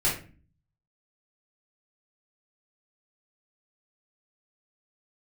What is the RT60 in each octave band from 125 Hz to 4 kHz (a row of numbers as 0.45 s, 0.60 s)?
0.80 s, 0.65 s, 0.40 s, 0.35 s, 0.35 s, 0.25 s